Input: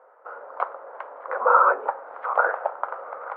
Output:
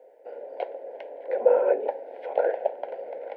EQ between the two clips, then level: Butterworth band-stop 1.2 kHz, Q 0.58; +7.5 dB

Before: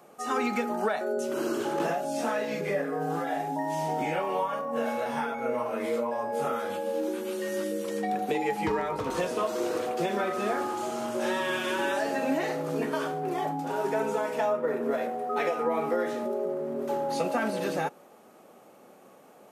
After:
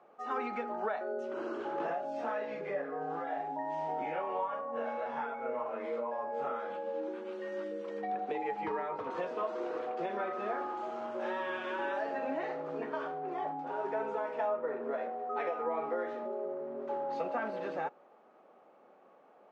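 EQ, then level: band-pass filter 910 Hz, Q 0.62; distance through air 110 m; -4.5 dB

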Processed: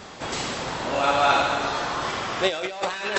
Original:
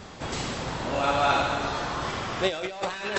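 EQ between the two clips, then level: bass shelf 190 Hz -10.5 dB; +4.0 dB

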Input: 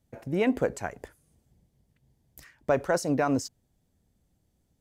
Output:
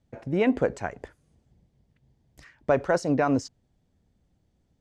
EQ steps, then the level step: distance through air 88 m; +2.5 dB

